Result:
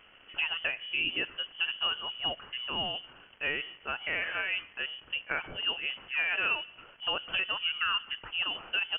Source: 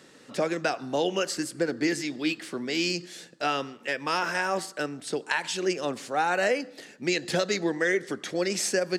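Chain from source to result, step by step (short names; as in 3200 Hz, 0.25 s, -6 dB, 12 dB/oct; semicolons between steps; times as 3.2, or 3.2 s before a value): crackle 380/s -36 dBFS; inverted band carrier 3200 Hz; gain -5 dB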